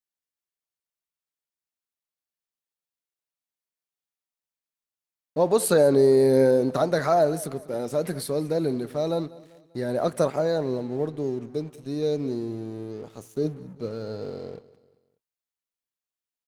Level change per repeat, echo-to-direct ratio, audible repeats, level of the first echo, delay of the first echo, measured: −7.0 dB, −19.0 dB, 3, −20.0 dB, 196 ms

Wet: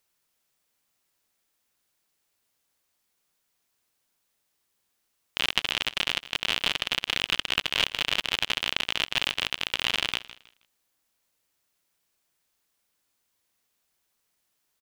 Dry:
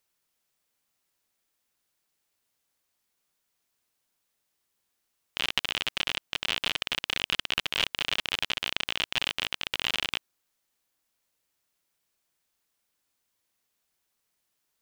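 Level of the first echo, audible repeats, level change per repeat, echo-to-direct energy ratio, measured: −17.0 dB, 2, −11.5 dB, −16.5 dB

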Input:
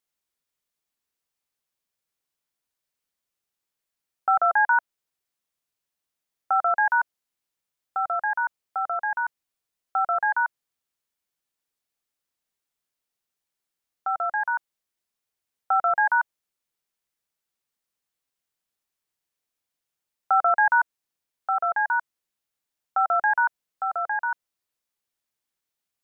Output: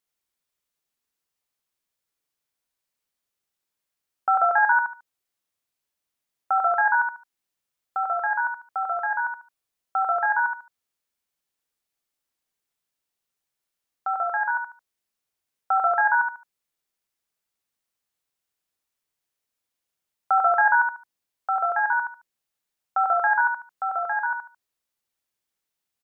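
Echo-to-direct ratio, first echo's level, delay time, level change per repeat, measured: −5.5 dB, −6.0 dB, 73 ms, −12.5 dB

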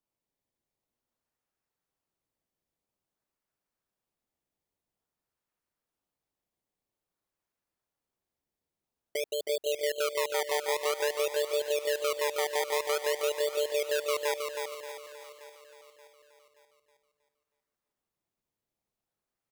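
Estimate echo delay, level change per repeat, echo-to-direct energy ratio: 318 ms, repeats not evenly spaced, −3.5 dB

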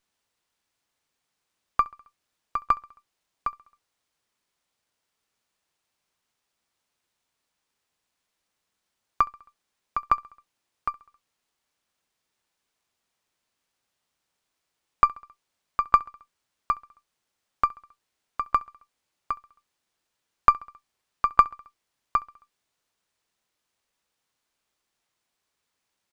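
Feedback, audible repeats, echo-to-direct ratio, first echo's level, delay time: 59%, 3, −22.0 dB, −24.0 dB, 67 ms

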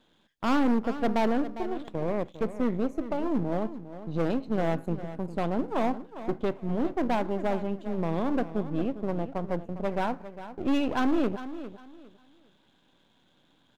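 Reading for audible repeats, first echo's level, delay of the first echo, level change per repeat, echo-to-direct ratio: 2, −13.0 dB, 404 ms, −12.0 dB, −12.5 dB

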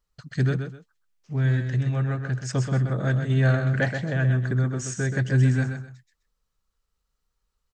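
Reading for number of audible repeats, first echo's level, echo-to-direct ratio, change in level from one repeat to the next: 2, −7.0 dB, −6.5 dB, −12.0 dB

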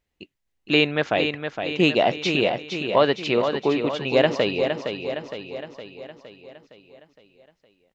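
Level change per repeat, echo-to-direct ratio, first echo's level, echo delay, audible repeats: −5.0 dB, −5.5 dB, −7.0 dB, 463 ms, 6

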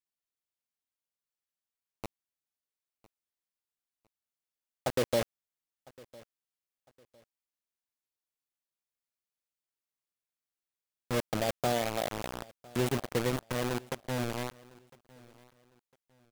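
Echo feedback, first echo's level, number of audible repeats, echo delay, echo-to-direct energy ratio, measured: 30%, −23.5 dB, 2, 1,005 ms, −23.0 dB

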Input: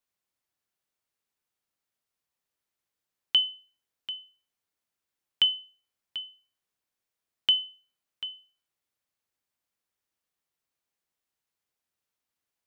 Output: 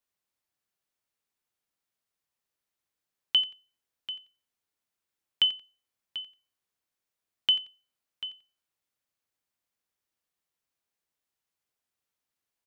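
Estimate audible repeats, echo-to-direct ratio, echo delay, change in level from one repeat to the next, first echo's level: 2, −16.5 dB, 89 ms, −13.0 dB, −16.5 dB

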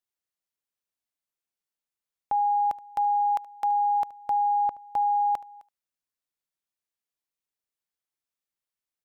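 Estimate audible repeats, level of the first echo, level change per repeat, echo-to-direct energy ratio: 1, −20.0 dB, repeats not evenly spaced, −20.0 dB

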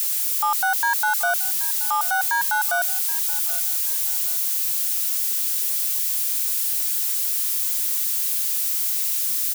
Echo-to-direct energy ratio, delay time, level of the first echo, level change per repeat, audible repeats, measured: −17.5 dB, 777 ms, −18.0 dB, −9.5 dB, 2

